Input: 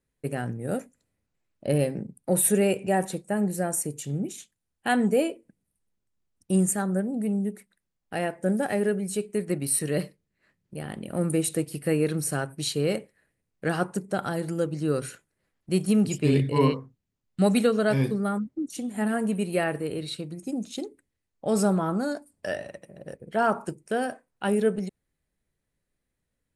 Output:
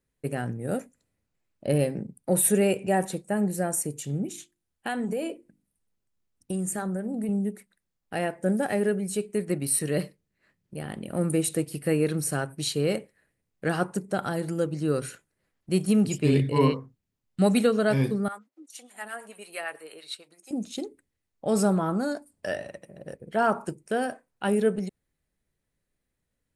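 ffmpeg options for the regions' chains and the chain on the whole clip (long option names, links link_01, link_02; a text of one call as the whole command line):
ffmpeg -i in.wav -filter_complex "[0:a]asettb=1/sr,asplit=3[link_01][link_02][link_03];[link_01]atrim=end=4.244[link_04];[link_02]atrim=start=4.24:end=7.29,asetpts=PTS-STARTPTS,afade=type=in:duration=0.004:curve=qsin,afade=type=out:start_time=3.046:duration=0.004:curve=qsin,bandreject=frequency=50:width_type=h:width=6,bandreject=frequency=100:width_type=h:width=6,bandreject=frequency=150:width_type=h:width=6,bandreject=frequency=200:width_type=h:width=6,bandreject=frequency=250:width_type=h:width=6,bandreject=frequency=300:width_type=h:width=6,bandreject=frequency=350:width_type=h:width=6,acompressor=threshold=-26dB:ratio=5:attack=3.2:release=140:knee=1:detection=peak[link_05];[link_03]atrim=start=7.286[link_06];[link_04][link_05]acrossfade=duration=0.004:curve1=hsin:curve2=qsin[link_07];[link_07][link_06]acrossfade=duration=0.004:curve1=qsin:curve2=hsin,asettb=1/sr,asplit=3[link_08][link_09][link_10];[link_08]atrim=end=18.284[link_11];[link_09]atrim=start=18.28:end=20.51,asetpts=PTS-STARTPTS,afade=type=in:duration=0.004:curve=qsin,afade=type=out:start_time=2.226:duration=0.004:curve=qsin,highpass=840,acrossover=split=660[link_12][link_13];[link_12]aeval=exprs='val(0)*(1-0.7/2+0.7/2*cos(2*PI*8.9*n/s))':channel_layout=same[link_14];[link_13]aeval=exprs='val(0)*(1-0.7/2-0.7/2*cos(2*PI*8.9*n/s))':channel_layout=same[link_15];[link_14][link_15]amix=inputs=2:normalize=0[link_16];[link_10]atrim=start=20.506[link_17];[link_11][link_16]acrossfade=duration=0.004:curve1=hsin:curve2=qsin[link_18];[link_18][link_17]acrossfade=duration=0.004:curve1=qsin:curve2=hsin" out.wav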